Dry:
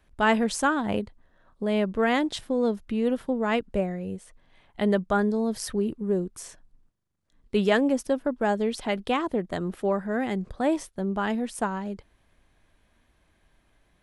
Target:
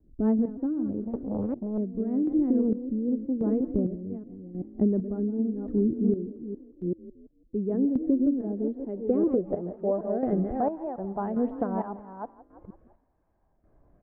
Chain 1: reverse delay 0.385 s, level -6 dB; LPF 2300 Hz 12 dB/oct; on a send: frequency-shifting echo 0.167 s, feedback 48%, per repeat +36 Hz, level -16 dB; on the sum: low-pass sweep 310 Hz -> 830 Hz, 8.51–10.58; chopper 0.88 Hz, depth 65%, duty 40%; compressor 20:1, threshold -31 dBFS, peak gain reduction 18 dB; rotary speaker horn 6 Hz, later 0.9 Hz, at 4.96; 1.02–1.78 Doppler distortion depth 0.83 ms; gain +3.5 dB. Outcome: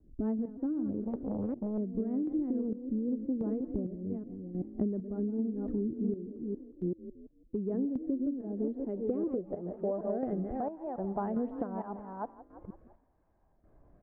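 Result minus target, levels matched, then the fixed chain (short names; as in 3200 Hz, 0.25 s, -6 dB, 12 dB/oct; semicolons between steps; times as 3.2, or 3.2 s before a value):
compressor: peak gain reduction +9 dB
reverse delay 0.385 s, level -6 dB; LPF 2300 Hz 12 dB/oct; on a send: frequency-shifting echo 0.167 s, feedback 48%, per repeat +36 Hz, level -16 dB; on the sum: low-pass sweep 310 Hz -> 830 Hz, 8.51–10.58; chopper 0.88 Hz, depth 65%, duty 40%; compressor 20:1, threshold -21.5 dBFS, peak gain reduction 9 dB; rotary speaker horn 6 Hz, later 0.9 Hz, at 4.96; 1.02–1.78 Doppler distortion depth 0.83 ms; gain +3.5 dB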